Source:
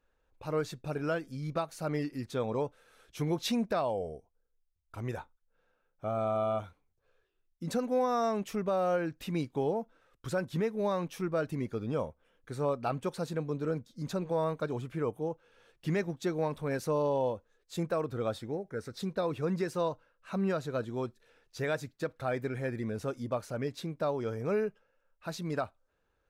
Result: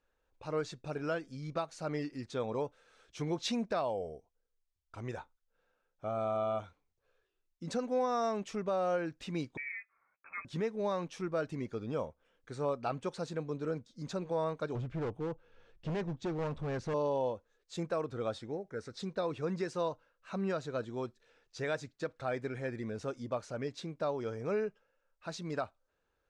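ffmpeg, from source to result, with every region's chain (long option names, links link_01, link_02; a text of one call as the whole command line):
ffmpeg -i in.wav -filter_complex "[0:a]asettb=1/sr,asplit=3[link_01][link_02][link_03];[link_01]atrim=end=9.574[link_04];[link_02]atrim=start=9.57:end=10.45,asetpts=PTS-STARTPTS,afade=type=in:duration=0.004:curve=qsin,afade=type=out:start_time=0.876:duration=0.004:curve=qsin,highpass=frequency=1400:poles=1,asplit=2[link_05][link_06];[link_06]adelay=12,volume=-8dB[link_07];[link_05][link_07]amix=inputs=2:normalize=0,atrim=end_sample=38808,lowpass=frequency=2300:width_type=q:width=0.5098,lowpass=frequency=2300:width_type=q:width=0.6013,lowpass=frequency=2300:width_type=q:width=0.9,lowpass=frequency=2300:width_type=q:width=2.563,afreqshift=-2700[link_08];[link_03]atrim=start=10.446[link_09];[link_04][link_08]acrossfade=duration=0.004:curve1=hsin:curve2=qsin[link_10];[link_10][link_09]acrossfade=duration=0.004:curve1=qsin:curve2=hsin,asettb=1/sr,asplit=3[link_11][link_12][link_13];[link_11]atrim=end=14.754[link_14];[link_12]atrim=start=14.75:end=16.94,asetpts=PTS-STARTPTS,afade=type=in:duration=0.004:curve=qsin,afade=type=out:start_time=2.186:duration=0.004:curve=qsin,aemphasis=mode=reproduction:type=bsi,asoftclip=type=hard:threshold=-28.5dB[link_15];[link_13]atrim=start=16.936[link_16];[link_14][link_15]acrossfade=duration=0.004:curve1=hsin:curve2=qsin[link_17];[link_17][link_16]acrossfade=duration=0.004:curve1=qsin:curve2=hsin,lowpass=frequency=7700:width=0.5412,lowpass=frequency=7700:width=1.3066,bass=frequency=250:gain=-3,treble=frequency=4000:gain=2,volume=-2.5dB" out.wav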